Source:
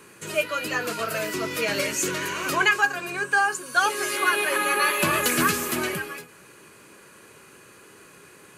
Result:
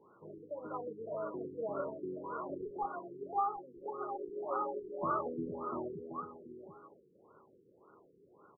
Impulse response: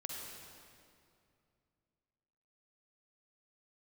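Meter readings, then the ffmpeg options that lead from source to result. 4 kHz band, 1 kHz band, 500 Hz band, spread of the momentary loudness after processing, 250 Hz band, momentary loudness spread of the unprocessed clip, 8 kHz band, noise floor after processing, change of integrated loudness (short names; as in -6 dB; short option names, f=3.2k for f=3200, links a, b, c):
under -40 dB, -12.0 dB, -10.0 dB, 14 LU, -12.0 dB, 7 LU, under -40 dB, -66 dBFS, -16.5 dB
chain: -filter_complex "[0:a]aeval=exprs='0.2*(abs(mod(val(0)/0.2+3,4)-2)-1)':c=same,lowshelf=f=340:g=-11,asplit=2[a][b];[b]aecho=0:1:732:0.355[c];[a][c]amix=inputs=2:normalize=0,afftfilt=real='re*lt(b*sr/1024,470*pow(1500/470,0.5+0.5*sin(2*PI*1.8*pts/sr)))':imag='im*lt(b*sr/1024,470*pow(1500/470,0.5+0.5*sin(2*PI*1.8*pts/sr)))':win_size=1024:overlap=0.75,volume=-6dB"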